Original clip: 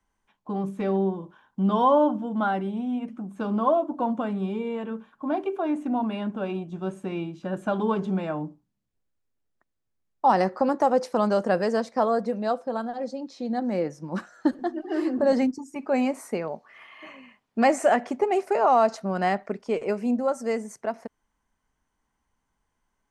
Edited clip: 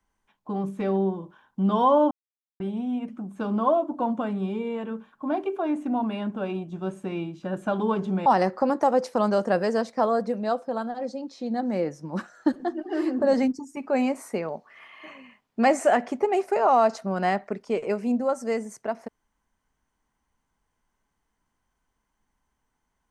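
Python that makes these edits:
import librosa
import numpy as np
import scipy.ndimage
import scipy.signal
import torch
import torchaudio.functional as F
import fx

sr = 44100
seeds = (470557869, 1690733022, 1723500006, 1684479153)

y = fx.edit(x, sr, fx.silence(start_s=2.11, length_s=0.49),
    fx.cut(start_s=8.26, length_s=1.99), tone=tone)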